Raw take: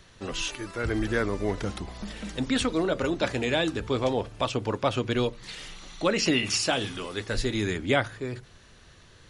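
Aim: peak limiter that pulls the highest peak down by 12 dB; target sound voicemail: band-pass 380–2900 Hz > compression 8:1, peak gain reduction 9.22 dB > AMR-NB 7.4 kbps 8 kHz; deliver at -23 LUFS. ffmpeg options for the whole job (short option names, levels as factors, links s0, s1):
-af "alimiter=limit=0.0841:level=0:latency=1,highpass=380,lowpass=2900,acompressor=threshold=0.0141:ratio=8,volume=10.6" -ar 8000 -c:a libopencore_amrnb -b:a 7400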